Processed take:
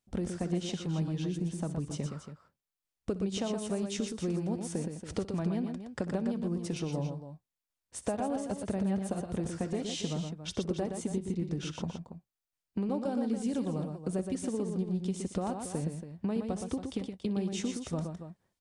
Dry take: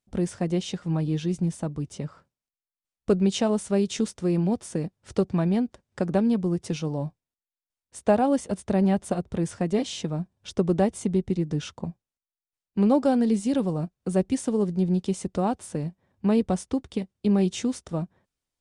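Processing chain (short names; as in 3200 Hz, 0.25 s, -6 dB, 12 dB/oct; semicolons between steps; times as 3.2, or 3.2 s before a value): compressor 6:1, threshold -31 dBFS, peak gain reduction 15 dB; on a send: tapped delay 62/119/280 ms -17.5/-6/-11 dB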